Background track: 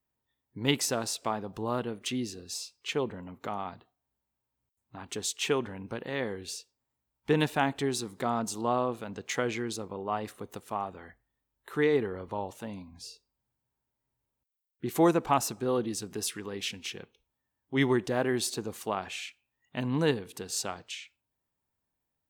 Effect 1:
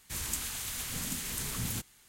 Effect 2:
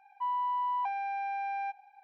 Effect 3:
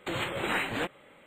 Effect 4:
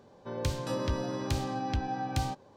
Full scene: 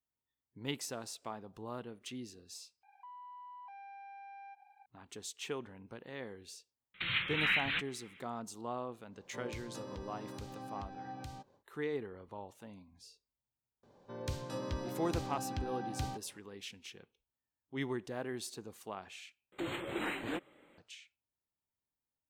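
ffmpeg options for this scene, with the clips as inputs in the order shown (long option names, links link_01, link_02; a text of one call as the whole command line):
ffmpeg -i bed.wav -i cue0.wav -i cue1.wav -i cue2.wav -i cue3.wav -filter_complex "[3:a]asplit=2[link_01][link_02];[4:a]asplit=2[link_03][link_04];[0:a]volume=-12dB[link_05];[2:a]acompressor=threshold=-46dB:ratio=6:attack=3.2:release=140:knee=1:detection=peak[link_06];[link_01]firequalizer=gain_entry='entry(170,0);entry(320,-14);entry(630,-17);entry(1300,1);entry(2300,10);entry(3900,8);entry(6100,-27);entry(14000,-11)':delay=0.05:min_phase=1[link_07];[link_03]alimiter=level_in=3.5dB:limit=-24dB:level=0:latency=1:release=426,volume=-3.5dB[link_08];[link_02]equalizer=frequency=320:width=2.3:gain=9[link_09];[link_05]asplit=3[link_10][link_11][link_12];[link_10]atrim=end=2.834[link_13];[link_06]atrim=end=2.03,asetpts=PTS-STARTPTS,volume=-5dB[link_14];[link_11]atrim=start=4.856:end=19.524[link_15];[link_09]atrim=end=1.26,asetpts=PTS-STARTPTS,volume=-9.5dB[link_16];[link_12]atrim=start=20.776[link_17];[link_07]atrim=end=1.26,asetpts=PTS-STARTPTS,volume=-6.5dB,afade=type=in:duration=0.004:curve=hsin,afade=type=out:start_time=1.256:duration=0.004:curve=hsin,adelay=6940[link_18];[link_08]atrim=end=2.56,asetpts=PTS-STARTPTS,volume=-8.5dB,afade=type=in:duration=0.1,afade=type=out:start_time=2.46:duration=0.1,adelay=9080[link_19];[link_04]atrim=end=2.56,asetpts=PTS-STARTPTS,volume=-7.5dB,afade=type=in:duration=0.004:curve=hsin,afade=type=out:start_time=2.556:duration=0.004:curve=hsin,adelay=13830[link_20];[link_13][link_14]acrossfade=duration=0.004:curve1=hsin:curve2=hsin[link_21];[link_21][link_15]acrossfade=duration=0.004:curve1=hsin:curve2=hsin[link_22];[link_22][link_16]acrossfade=duration=0.004:curve1=hsin:curve2=hsin[link_23];[link_23][link_17]acrossfade=duration=0.004:curve1=hsin:curve2=hsin[link_24];[link_24][link_18][link_19][link_20]amix=inputs=4:normalize=0" out.wav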